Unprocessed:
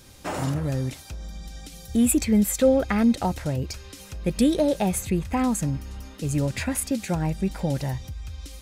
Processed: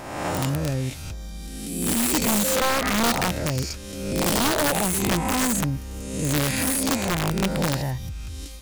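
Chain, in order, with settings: spectral swells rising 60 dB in 1.20 s; limiter -13 dBFS, peak gain reduction 7 dB; wrapped overs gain 15.5 dB

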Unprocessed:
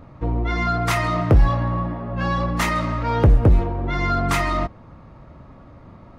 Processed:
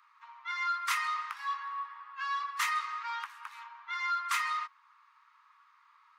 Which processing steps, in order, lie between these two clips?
steep high-pass 990 Hz 72 dB/oct; gain -7 dB

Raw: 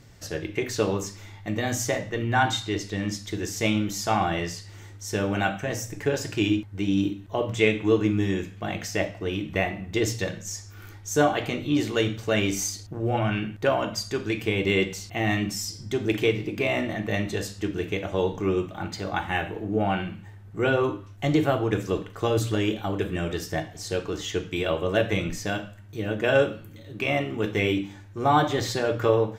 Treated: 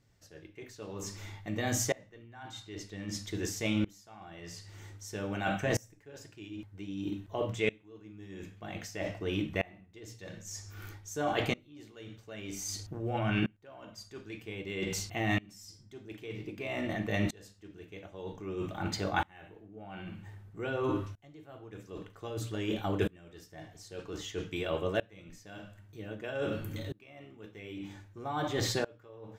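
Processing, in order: reverse; compressor 12:1, threshold -33 dBFS, peak gain reduction 18.5 dB; reverse; dB-ramp tremolo swelling 0.52 Hz, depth 27 dB; gain +8.5 dB

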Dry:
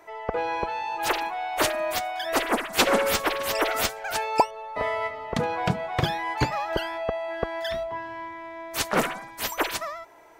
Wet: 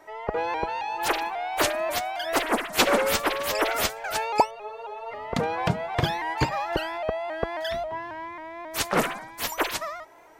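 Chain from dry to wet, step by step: spectral freeze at 4.57, 0.54 s; shaped vibrato saw up 3.7 Hz, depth 100 cents

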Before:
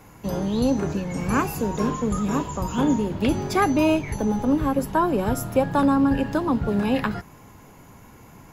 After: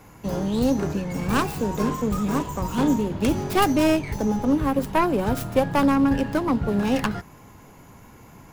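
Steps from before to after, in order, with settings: tracing distortion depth 0.28 ms

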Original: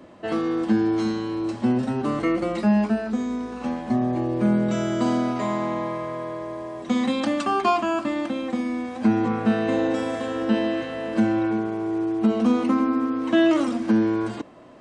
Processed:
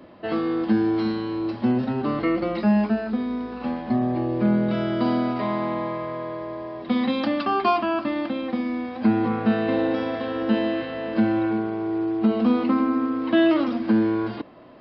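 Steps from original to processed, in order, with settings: downsampling 11025 Hz

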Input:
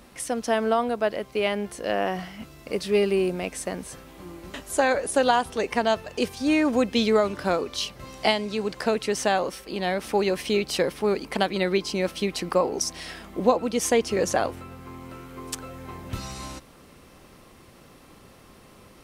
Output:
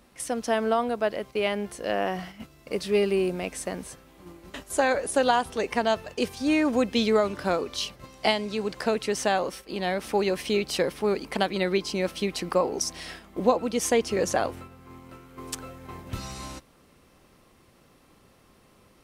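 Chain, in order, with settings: gate -39 dBFS, range -6 dB; gain -1.5 dB

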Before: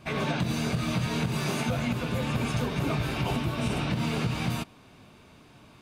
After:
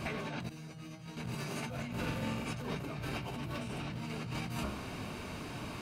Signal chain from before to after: notch 3500 Hz, Q 11; de-hum 68.83 Hz, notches 21; negative-ratio compressor -40 dBFS, ratio -1; 0.49–1.17 resonator 160 Hz, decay 0.2 s, harmonics all, mix 90%; 1.88–2.52 flutter echo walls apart 7.7 m, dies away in 0.77 s; 3.17–3.98 hard clip -35 dBFS, distortion -24 dB; gain +1 dB

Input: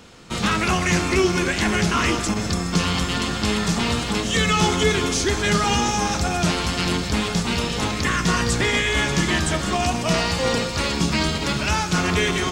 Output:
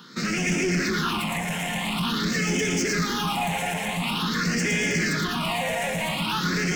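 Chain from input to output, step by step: Chebyshev high-pass 160 Hz, order 5; in parallel at +1 dB: limiter -16 dBFS, peak gain reduction 9 dB; on the sum: time stretch by phase-locked vocoder 0.54×; on a send: split-band echo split 2400 Hz, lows 0.255 s, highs 0.112 s, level -3.5 dB; on the sum: soft clip -18.5 dBFS, distortion -9 dB; phaser stages 6, 0.47 Hz, lowest notch 320–1100 Hz; gain -1 dB

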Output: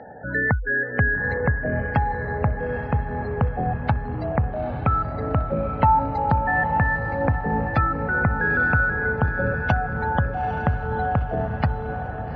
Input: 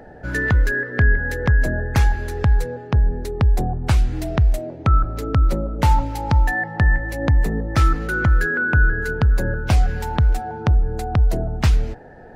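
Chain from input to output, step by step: spectral gate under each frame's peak -25 dB strong; speaker cabinet 110–4300 Hz, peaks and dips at 350 Hz -9 dB, 520 Hz +4 dB, 820 Hz +6 dB; diffused feedback echo 0.872 s, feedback 53%, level -7 dB

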